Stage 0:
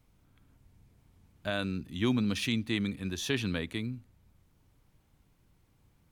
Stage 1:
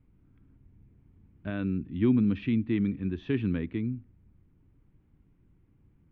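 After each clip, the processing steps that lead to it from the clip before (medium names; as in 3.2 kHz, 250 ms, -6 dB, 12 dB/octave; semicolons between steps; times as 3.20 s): low-pass 2.6 kHz 24 dB/octave; resonant low shelf 450 Hz +8.5 dB, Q 1.5; trim -5 dB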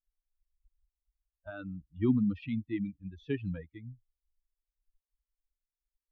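expander on every frequency bin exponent 3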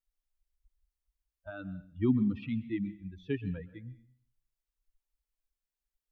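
plate-style reverb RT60 0.57 s, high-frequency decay 1×, pre-delay 110 ms, DRR 15.5 dB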